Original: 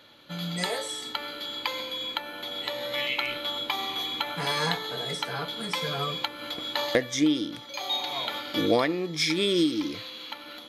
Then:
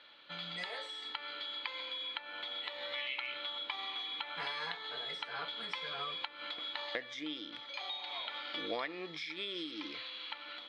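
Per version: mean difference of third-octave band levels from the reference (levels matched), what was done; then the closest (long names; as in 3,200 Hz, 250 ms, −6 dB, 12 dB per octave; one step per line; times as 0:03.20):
7.5 dB: meter weighting curve ITU-R 468
downward compressor 4 to 1, threshold −27 dBFS, peak gain reduction 13 dB
high-frequency loss of the air 420 metres
level −3 dB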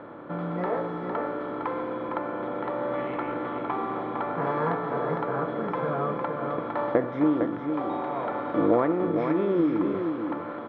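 13.0 dB: compressor on every frequency bin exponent 0.6
Chebyshev low-pass filter 1,300 Hz, order 3
low-shelf EQ 65 Hz −7.5 dB
single-tap delay 457 ms −6 dB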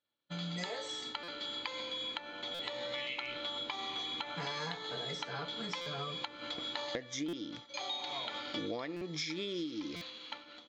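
5.0 dB: downward expander −36 dBFS
downsampling to 16,000 Hz
downward compressor 6 to 1, threshold −32 dBFS, peak gain reduction 13.5 dB
buffer that repeats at 0:01.23/0:02.54/0:05.81/0:07.28/0:08.96/0:09.96, samples 256, times 8
level −4 dB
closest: third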